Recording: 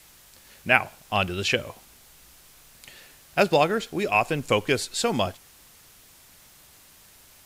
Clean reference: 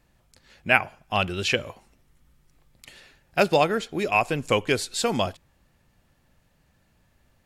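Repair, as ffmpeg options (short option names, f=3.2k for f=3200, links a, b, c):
-af "afftdn=nr=11:nf=-53"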